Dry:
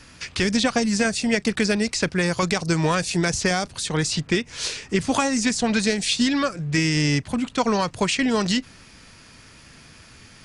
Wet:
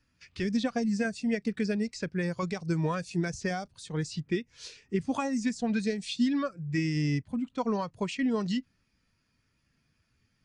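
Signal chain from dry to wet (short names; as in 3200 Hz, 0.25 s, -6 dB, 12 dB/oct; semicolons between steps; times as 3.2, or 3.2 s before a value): spectral expander 1.5:1; gain -7.5 dB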